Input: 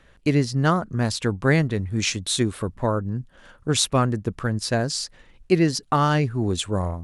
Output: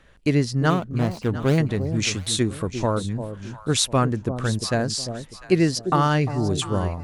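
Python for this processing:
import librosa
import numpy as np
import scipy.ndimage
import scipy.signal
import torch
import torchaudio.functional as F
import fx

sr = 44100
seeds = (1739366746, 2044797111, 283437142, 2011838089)

y = fx.median_filter(x, sr, points=25, at=(0.7, 1.58))
y = fx.echo_alternate(y, sr, ms=349, hz=820.0, feedback_pct=52, wet_db=-9.0)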